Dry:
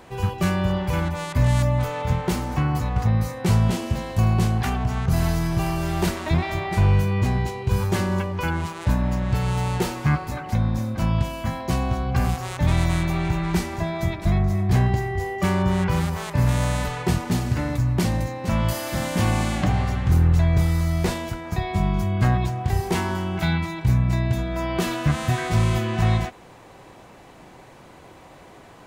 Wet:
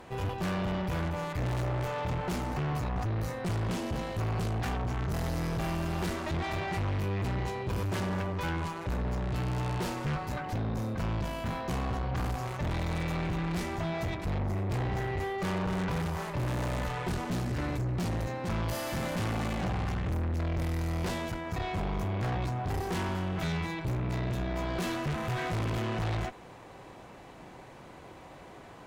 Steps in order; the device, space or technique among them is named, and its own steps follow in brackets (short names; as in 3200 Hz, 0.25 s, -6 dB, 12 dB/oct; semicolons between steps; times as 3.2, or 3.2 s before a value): tube preamp driven hard (tube stage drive 29 dB, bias 0.55; high shelf 5300 Hz -5 dB)